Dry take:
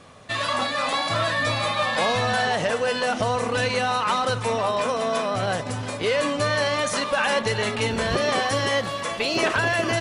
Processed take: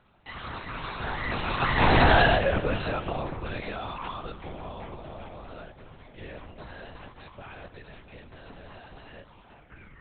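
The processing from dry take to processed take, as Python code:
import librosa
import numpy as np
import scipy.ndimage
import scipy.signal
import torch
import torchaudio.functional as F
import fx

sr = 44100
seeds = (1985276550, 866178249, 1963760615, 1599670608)

y = fx.tape_stop_end(x, sr, length_s=1.08)
y = fx.doppler_pass(y, sr, speed_mps=34, closest_m=7.5, pass_at_s=2.07)
y = fx.lpc_vocoder(y, sr, seeds[0], excitation='whisper', order=8)
y = y * 10.0 ** (5.5 / 20.0)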